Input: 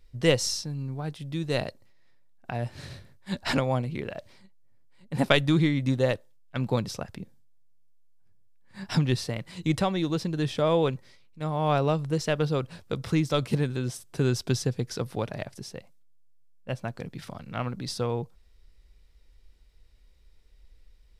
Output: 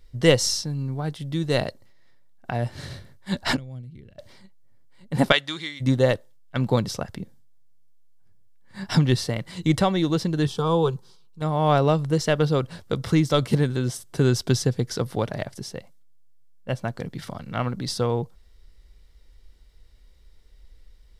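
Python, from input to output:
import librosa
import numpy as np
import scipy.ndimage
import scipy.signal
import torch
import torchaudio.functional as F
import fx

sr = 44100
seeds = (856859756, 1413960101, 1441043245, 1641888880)

y = fx.tone_stack(x, sr, knobs='10-0-1', at=(3.55, 4.18), fade=0.02)
y = fx.bandpass_q(y, sr, hz=fx.line((5.31, 2400.0), (5.8, 7100.0)), q=0.59, at=(5.31, 5.8), fade=0.02)
y = fx.fixed_phaser(y, sr, hz=400.0, stages=8, at=(10.47, 11.42))
y = fx.notch(y, sr, hz=2500.0, q=8.9)
y = y * librosa.db_to_amplitude(5.0)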